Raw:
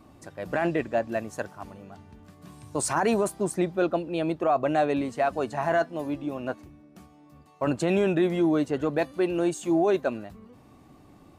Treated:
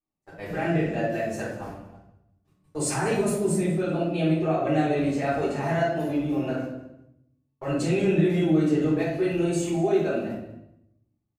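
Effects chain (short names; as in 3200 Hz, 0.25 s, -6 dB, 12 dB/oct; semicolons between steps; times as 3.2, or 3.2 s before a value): gate -41 dBFS, range -41 dB; dynamic EQ 1000 Hz, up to -7 dB, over -41 dBFS, Q 1.3; limiter -20.5 dBFS, peak gain reduction 6 dB; feedback echo 0.192 s, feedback 18%, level -17.5 dB; shoebox room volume 180 m³, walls mixed, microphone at 4.1 m; gain -7.5 dB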